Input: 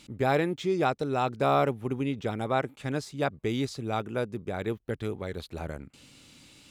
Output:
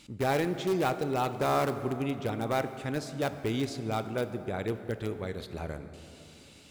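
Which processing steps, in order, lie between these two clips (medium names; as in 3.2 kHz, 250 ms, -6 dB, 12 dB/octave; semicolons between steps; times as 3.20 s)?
in parallel at -10.5 dB: integer overflow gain 20.5 dB; on the sum: plate-style reverb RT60 3.3 s, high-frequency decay 0.5×, DRR 9.5 dB; trim -3.5 dB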